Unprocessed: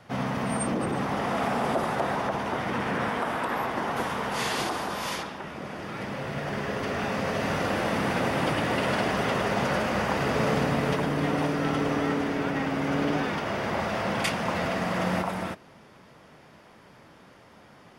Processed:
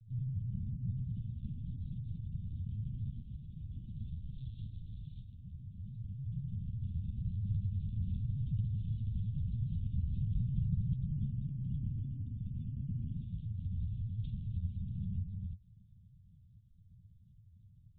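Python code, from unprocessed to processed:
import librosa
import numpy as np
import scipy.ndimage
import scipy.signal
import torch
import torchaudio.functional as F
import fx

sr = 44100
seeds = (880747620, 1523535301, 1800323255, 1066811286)

y = fx.spec_gate(x, sr, threshold_db=-30, keep='strong')
y = scipy.signal.sosfilt(scipy.signal.cheby2(4, 80, [480.0, 2000.0], 'bandstop', fs=sr, output='sos'), y)
y = fx.lpc_vocoder(y, sr, seeds[0], excitation='pitch_kept', order=16)
y = F.gain(torch.from_numpy(y), 7.5).numpy()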